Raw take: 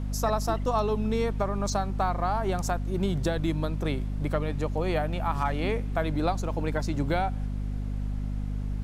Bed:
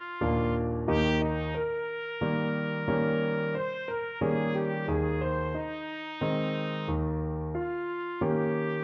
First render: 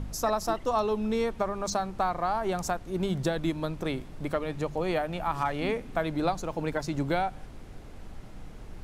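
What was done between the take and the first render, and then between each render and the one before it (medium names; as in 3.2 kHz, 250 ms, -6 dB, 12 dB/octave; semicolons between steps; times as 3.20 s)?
de-hum 50 Hz, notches 5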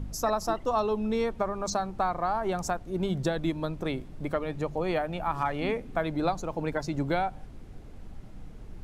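noise reduction 6 dB, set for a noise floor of -45 dBFS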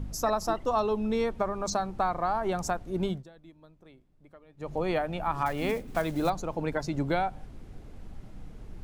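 3.07–4.74 s: dip -23.5 dB, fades 0.17 s; 5.46–6.30 s: block-companded coder 5-bit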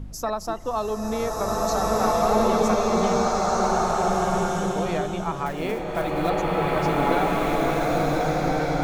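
swelling reverb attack 1870 ms, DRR -7.5 dB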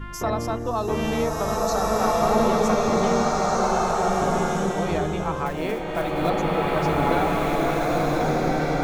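add bed -2 dB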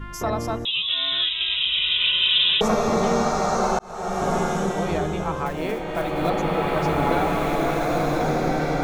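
0.65–2.61 s: frequency inversion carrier 3.8 kHz; 3.79–4.32 s: fade in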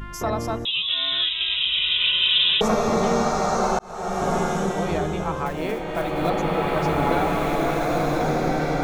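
upward compressor, threshold -37 dBFS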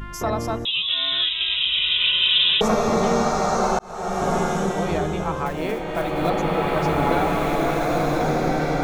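trim +1 dB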